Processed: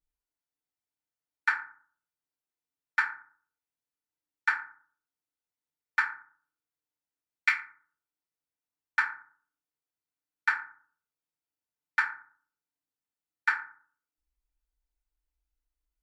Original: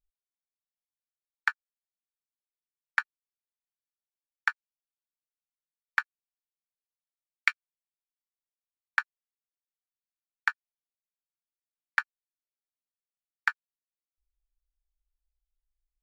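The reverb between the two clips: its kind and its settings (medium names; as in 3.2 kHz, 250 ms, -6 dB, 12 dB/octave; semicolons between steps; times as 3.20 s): FDN reverb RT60 0.48 s, low-frequency decay 1.35×, high-frequency decay 0.45×, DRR -9.5 dB; trim -8 dB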